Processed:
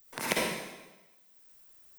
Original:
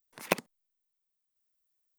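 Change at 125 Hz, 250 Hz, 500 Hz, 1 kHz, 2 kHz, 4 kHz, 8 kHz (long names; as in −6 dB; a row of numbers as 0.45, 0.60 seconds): +2.0, +2.5, +1.0, +2.0, +4.5, +7.0, +6.5 decibels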